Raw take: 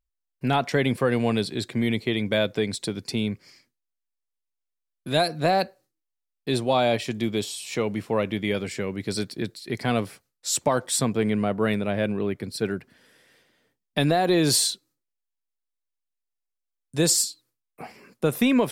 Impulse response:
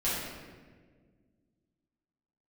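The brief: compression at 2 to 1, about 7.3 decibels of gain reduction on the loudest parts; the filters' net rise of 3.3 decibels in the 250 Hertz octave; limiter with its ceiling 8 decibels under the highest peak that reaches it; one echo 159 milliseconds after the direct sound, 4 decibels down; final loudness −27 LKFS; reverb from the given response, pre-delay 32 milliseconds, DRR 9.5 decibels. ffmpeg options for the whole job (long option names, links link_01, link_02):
-filter_complex "[0:a]equalizer=frequency=250:width_type=o:gain=4,acompressor=threshold=-27dB:ratio=2,alimiter=limit=-19.5dB:level=0:latency=1,aecho=1:1:159:0.631,asplit=2[link_01][link_02];[1:a]atrim=start_sample=2205,adelay=32[link_03];[link_02][link_03]afir=irnorm=-1:irlink=0,volume=-18.5dB[link_04];[link_01][link_04]amix=inputs=2:normalize=0,volume=2dB"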